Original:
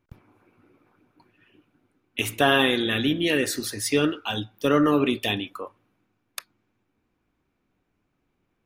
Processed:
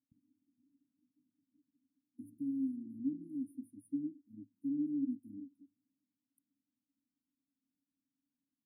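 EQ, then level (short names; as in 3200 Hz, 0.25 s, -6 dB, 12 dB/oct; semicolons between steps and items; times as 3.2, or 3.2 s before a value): vowel filter i; brick-wall FIR band-stop 330–9100 Hz; bell 510 Hz -7 dB 1.6 oct; -4.5 dB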